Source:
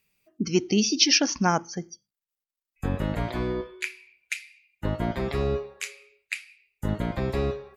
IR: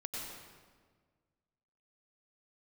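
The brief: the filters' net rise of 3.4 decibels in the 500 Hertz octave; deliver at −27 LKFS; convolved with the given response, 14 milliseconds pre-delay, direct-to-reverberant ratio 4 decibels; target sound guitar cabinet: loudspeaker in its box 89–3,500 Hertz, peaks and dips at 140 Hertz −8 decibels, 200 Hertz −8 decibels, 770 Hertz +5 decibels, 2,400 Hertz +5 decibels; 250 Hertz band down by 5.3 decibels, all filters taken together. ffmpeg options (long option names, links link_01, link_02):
-filter_complex "[0:a]equalizer=frequency=250:width_type=o:gain=-6,equalizer=frequency=500:width_type=o:gain=6.5,asplit=2[link_01][link_02];[1:a]atrim=start_sample=2205,adelay=14[link_03];[link_02][link_03]afir=irnorm=-1:irlink=0,volume=-4.5dB[link_04];[link_01][link_04]amix=inputs=2:normalize=0,highpass=89,equalizer=frequency=140:width_type=q:width=4:gain=-8,equalizer=frequency=200:width_type=q:width=4:gain=-8,equalizer=frequency=770:width_type=q:width=4:gain=5,equalizer=frequency=2400:width_type=q:width=4:gain=5,lowpass=frequency=3500:width=0.5412,lowpass=frequency=3500:width=1.3066,volume=-0.5dB"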